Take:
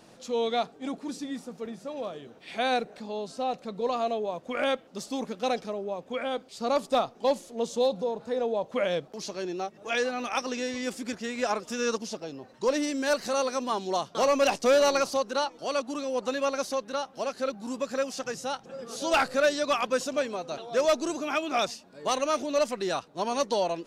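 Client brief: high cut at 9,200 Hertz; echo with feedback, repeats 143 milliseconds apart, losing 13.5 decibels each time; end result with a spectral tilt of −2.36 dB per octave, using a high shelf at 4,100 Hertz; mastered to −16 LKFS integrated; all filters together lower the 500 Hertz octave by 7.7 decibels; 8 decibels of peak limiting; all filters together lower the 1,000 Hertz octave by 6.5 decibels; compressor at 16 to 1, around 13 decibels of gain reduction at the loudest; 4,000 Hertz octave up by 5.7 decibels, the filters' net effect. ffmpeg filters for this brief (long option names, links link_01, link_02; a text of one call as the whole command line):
ffmpeg -i in.wav -af "lowpass=9200,equalizer=frequency=500:width_type=o:gain=-7,equalizer=frequency=1000:width_type=o:gain=-7,equalizer=frequency=4000:width_type=o:gain=5.5,highshelf=frequency=4100:gain=3.5,acompressor=threshold=-34dB:ratio=16,alimiter=level_in=6dB:limit=-24dB:level=0:latency=1,volume=-6dB,aecho=1:1:143|286:0.211|0.0444,volume=24dB" out.wav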